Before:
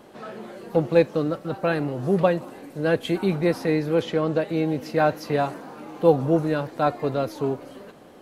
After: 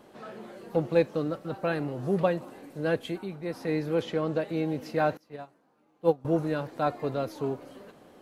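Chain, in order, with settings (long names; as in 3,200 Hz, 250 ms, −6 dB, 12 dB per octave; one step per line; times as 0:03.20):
0:02.93–0:03.78: duck −9.5 dB, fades 0.36 s
0:05.17–0:06.25: expander for the loud parts 2.5 to 1, over −27 dBFS
level −5.5 dB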